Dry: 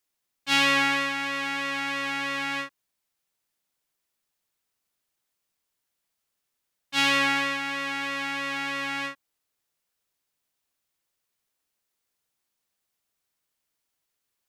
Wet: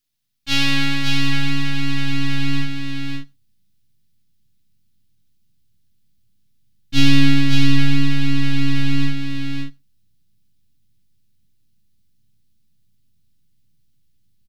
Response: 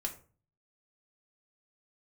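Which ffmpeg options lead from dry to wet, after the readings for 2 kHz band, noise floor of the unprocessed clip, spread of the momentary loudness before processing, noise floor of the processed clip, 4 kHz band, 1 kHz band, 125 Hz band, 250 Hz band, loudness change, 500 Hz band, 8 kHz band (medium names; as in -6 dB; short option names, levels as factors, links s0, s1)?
0.0 dB, -81 dBFS, 10 LU, -59 dBFS, +5.0 dB, -5.5 dB, +27.5 dB, +14.5 dB, +5.0 dB, -7.0 dB, +3.0 dB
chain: -filter_complex "[0:a]aeval=exprs='if(lt(val(0),0),0.447*val(0),val(0))':c=same,equalizer=f=125:t=o:w=1:g=9,equalizer=f=250:t=o:w=1:g=3,equalizer=f=500:t=o:w=1:g=-9,equalizer=f=1000:t=o:w=1:g=-8,equalizer=f=2000:t=o:w=1:g=-3,equalizer=f=4000:t=o:w=1:g=4,equalizer=f=8000:t=o:w=1:g=-4,aecho=1:1:553:0.596,asplit=2[s0][s1];[1:a]atrim=start_sample=2205,atrim=end_sample=3528,asetrate=27342,aresample=44100[s2];[s1][s2]afir=irnorm=-1:irlink=0,volume=0.2[s3];[s0][s3]amix=inputs=2:normalize=0,asubboost=boost=12:cutoff=200,volume=1.5"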